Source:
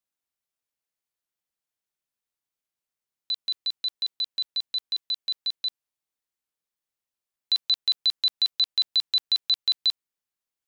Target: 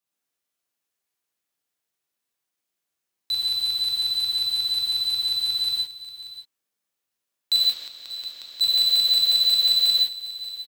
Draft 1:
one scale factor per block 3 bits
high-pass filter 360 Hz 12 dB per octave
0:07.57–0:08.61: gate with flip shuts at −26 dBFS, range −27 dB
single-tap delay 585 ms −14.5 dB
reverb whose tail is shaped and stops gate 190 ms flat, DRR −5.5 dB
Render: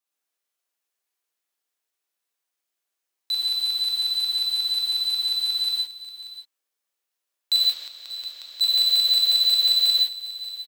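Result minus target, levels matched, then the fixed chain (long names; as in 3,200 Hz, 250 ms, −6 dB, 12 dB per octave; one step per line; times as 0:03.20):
125 Hz band −19.0 dB
one scale factor per block 3 bits
high-pass filter 92 Hz 12 dB per octave
0:07.57–0:08.61: gate with flip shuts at −26 dBFS, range −27 dB
single-tap delay 585 ms −14.5 dB
reverb whose tail is shaped and stops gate 190 ms flat, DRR −5.5 dB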